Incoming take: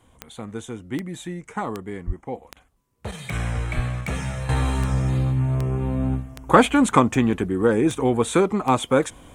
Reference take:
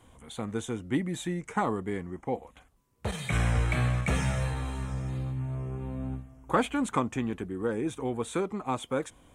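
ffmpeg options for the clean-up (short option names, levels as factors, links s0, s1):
-filter_complex "[0:a]adeclick=t=4,asplit=3[s0][s1][s2];[s0]afade=t=out:st=2.06:d=0.02[s3];[s1]highpass=f=140:w=0.5412,highpass=f=140:w=1.3066,afade=t=in:st=2.06:d=0.02,afade=t=out:st=2.18:d=0.02[s4];[s2]afade=t=in:st=2.18:d=0.02[s5];[s3][s4][s5]amix=inputs=3:normalize=0,asplit=3[s6][s7][s8];[s6]afade=t=out:st=3.75:d=0.02[s9];[s7]highpass=f=140:w=0.5412,highpass=f=140:w=1.3066,afade=t=in:st=3.75:d=0.02,afade=t=out:st=3.87:d=0.02[s10];[s8]afade=t=in:st=3.87:d=0.02[s11];[s9][s10][s11]amix=inputs=3:normalize=0,asetnsamples=n=441:p=0,asendcmd='4.49 volume volume -11.5dB',volume=1"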